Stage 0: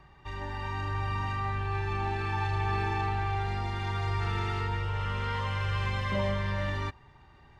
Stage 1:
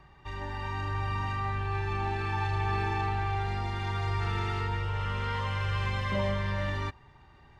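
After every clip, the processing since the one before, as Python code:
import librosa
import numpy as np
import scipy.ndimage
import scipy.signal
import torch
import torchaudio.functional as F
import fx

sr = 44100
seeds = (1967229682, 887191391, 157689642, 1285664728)

y = x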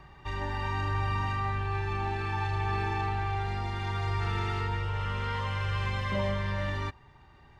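y = fx.rider(x, sr, range_db=5, speed_s=2.0)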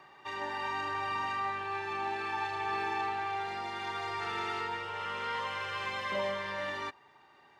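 y = scipy.signal.sosfilt(scipy.signal.butter(2, 370.0, 'highpass', fs=sr, output='sos'), x)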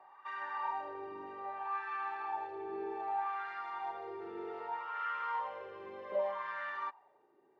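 y = fx.wah_lfo(x, sr, hz=0.64, low_hz=360.0, high_hz=1400.0, q=3.1)
y = y * 10.0 ** (3.0 / 20.0)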